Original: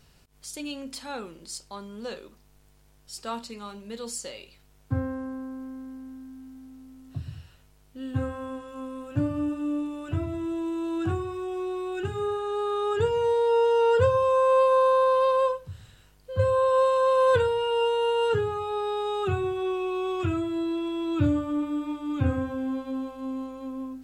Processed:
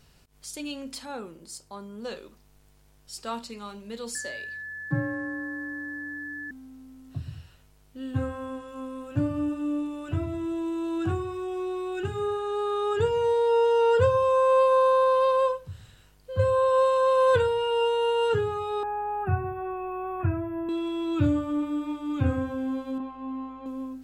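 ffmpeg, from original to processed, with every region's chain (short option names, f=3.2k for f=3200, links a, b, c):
-filter_complex "[0:a]asettb=1/sr,asplit=3[a][b][c];[a]atrim=end=1.054[d];[b]atrim=start=1.05:end=2.05,asetpts=PTS-STARTPTS,afade=t=in:d=0.004:c=qsin,afade=t=out:st=0.996:d=0.004:c=qsin,highpass=58,equalizer=f=3.4k:w=0.57:g=-7[e];[c]atrim=start=2.046[f];[d][e]acrossfade=d=0.004:c1=hsin:c2=qsin[g];[g][f]acrossfade=d=0.004:c1=qsin:c2=hsin,asettb=1/sr,asplit=3[h][i][j];[h]atrim=end=4.154[k];[i]atrim=start=4.15:end=6.51,asetpts=PTS-STARTPTS,afade=t=in:d=0.004:c=qsin,afade=t=out:st=2.356:d=0.004:c=qsin,equalizer=f=3k:w=5.8:g=-5.5,aeval=exprs='val(0)+0.0178*sin(2*PI*1700*n/s)':c=same,afreqshift=31[l];[j]atrim=start=6.506[m];[k][l]acrossfade=d=0.004:c1=hsin:c2=qsin[n];[n][m]acrossfade=d=0.004:c1=qsin:c2=hsin,asettb=1/sr,asplit=3[o][p][q];[o]atrim=end=18.834[r];[p]atrim=start=18.83:end=20.69,asetpts=PTS-STARTPTS,afade=t=in:d=0.004:c=qsin,afade=t=out:st=1.856:d=0.004:c=qsin,asuperstop=centerf=5300:order=8:qfactor=0.55,aecho=1:1:1.2:0.64,atrim=end_sample=82026[s];[q]atrim=start=20.686[t];[r][s]acrossfade=d=0.004:c1=hsin:c2=qsin[u];[u][t]acrossfade=d=0.004:c1=qsin:c2=hsin,asettb=1/sr,asplit=3[v][w][x];[v]atrim=end=22.984[y];[w]atrim=start=22.98:end=23.66,asetpts=PTS-STARTPTS,afade=t=in:d=0.004:c=qsin,afade=t=out:st=0.676:d=0.004:c=qsin,lowpass=2.3k,lowshelf=f=330:g=-6,asplit=2[z][aa];[aa]adelay=20,volume=-2dB[ab];[z][ab]amix=inputs=2:normalize=0,atrim=end_sample=29988[ac];[x]atrim=start=23.656[ad];[y][ac]acrossfade=d=0.004:c1=hsin:c2=qsin[ae];[ae][ad]acrossfade=d=0.004:c1=qsin:c2=hsin"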